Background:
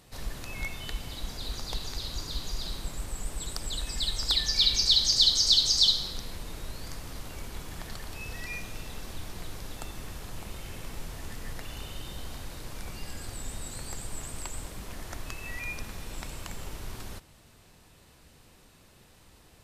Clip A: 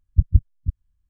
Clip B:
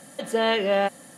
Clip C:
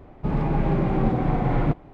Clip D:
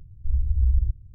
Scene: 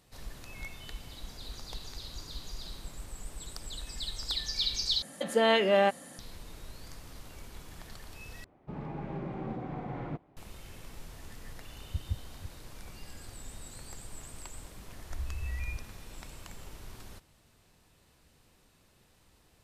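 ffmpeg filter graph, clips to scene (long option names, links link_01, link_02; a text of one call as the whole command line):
ffmpeg -i bed.wav -i cue0.wav -i cue1.wav -i cue2.wav -i cue3.wav -filter_complex "[0:a]volume=-7.5dB[link_01];[2:a]aresample=32000,aresample=44100[link_02];[3:a]highpass=frequency=120:poles=1[link_03];[1:a]highpass=59[link_04];[4:a]alimiter=limit=-22dB:level=0:latency=1:release=71[link_05];[link_01]asplit=3[link_06][link_07][link_08];[link_06]atrim=end=5.024[link_09];[link_02]atrim=end=1.17,asetpts=PTS-STARTPTS,volume=-2dB[link_10];[link_07]atrim=start=6.186:end=8.444[link_11];[link_03]atrim=end=1.93,asetpts=PTS-STARTPTS,volume=-14dB[link_12];[link_08]atrim=start=10.366[link_13];[link_04]atrim=end=1.09,asetpts=PTS-STARTPTS,volume=-16.5dB,afade=type=in:duration=0.004:curve=hsin,afade=type=out:start_time=1.086:duration=0.004:curve=hsin,adelay=11760[link_14];[link_05]atrim=end=1.14,asetpts=PTS-STARTPTS,volume=-8dB,afade=type=in:duration=0.004:curve=hsin,afade=type=out:start_time=1.136:duration=0.004:curve=hsin,adelay=14860[link_15];[link_09][link_10]acrossfade=duration=0.004:curve1=hsin:curve2=hsin[link_16];[link_16][link_11]acrossfade=duration=0.004:curve1=hsin:curve2=hsin[link_17];[link_17][link_12]acrossfade=duration=0.004:curve1=hsin:curve2=hsin[link_18];[link_18][link_13]acrossfade=duration=0.004:curve1=hsin:curve2=hsin[link_19];[link_19][link_14][link_15]amix=inputs=3:normalize=0" out.wav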